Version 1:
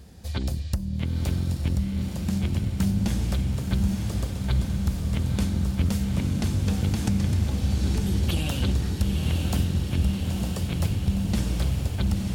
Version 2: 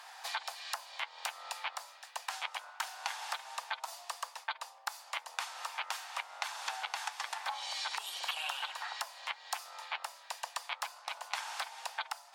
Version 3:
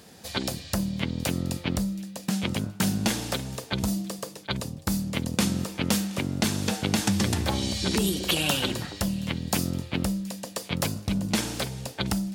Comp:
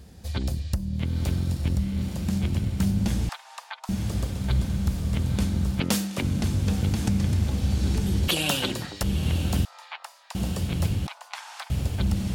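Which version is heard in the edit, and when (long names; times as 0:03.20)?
1
0:03.29–0:03.89: punch in from 2
0:05.80–0:06.23: punch in from 3
0:08.28–0:09.03: punch in from 3
0:09.65–0:10.35: punch in from 2
0:11.07–0:11.70: punch in from 2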